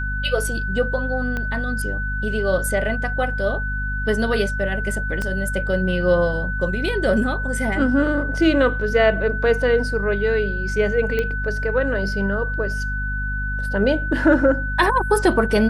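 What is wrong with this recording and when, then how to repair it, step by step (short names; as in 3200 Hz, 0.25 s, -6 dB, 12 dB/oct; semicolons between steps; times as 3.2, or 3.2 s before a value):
hum 50 Hz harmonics 5 -26 dBFS
tone 1500 Hz -26 dBFS
1.37 pop -14 dBFS
5.22 pop -13 dBFS
11.19 pop -11 dBFS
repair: de-click; notch 1500 Hz, Q 30; de-hum 50 Hz, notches 5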